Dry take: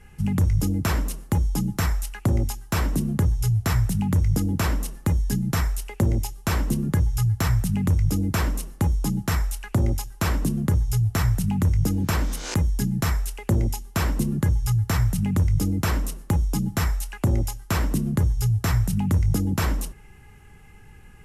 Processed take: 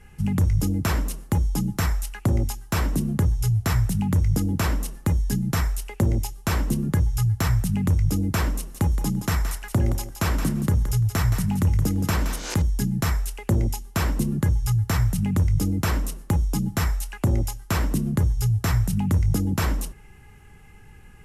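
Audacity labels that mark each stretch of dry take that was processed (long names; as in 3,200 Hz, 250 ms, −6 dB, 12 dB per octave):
8.570000	12.620000	feedback echo with a high-pass in the loop 171 ms, feedback 16%, level −8 dB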